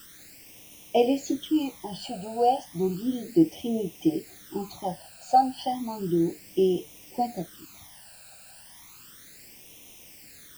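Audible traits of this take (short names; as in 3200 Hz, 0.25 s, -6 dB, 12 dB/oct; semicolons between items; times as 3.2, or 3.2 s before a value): a quantiser's noise floor 8-bit, dither triangular; phasing stages 12, 0.33 Hz, lowest notch 340–1500 Hz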